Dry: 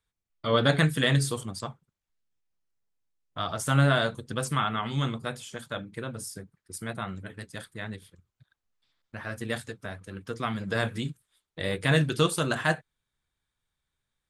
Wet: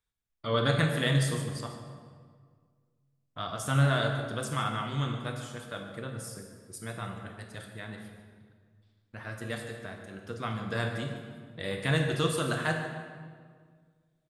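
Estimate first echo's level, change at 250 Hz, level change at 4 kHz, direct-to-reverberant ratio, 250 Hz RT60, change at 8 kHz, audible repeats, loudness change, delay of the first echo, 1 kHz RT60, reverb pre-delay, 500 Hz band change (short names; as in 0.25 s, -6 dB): -15.0 dB, -3.5 dB, -3.5 dB, 3.5 dB, 2.1 s, -4.0 dB, 1, -3.5 dB, 0.146 s, 1.7 s, 23 ms, -3.0 dB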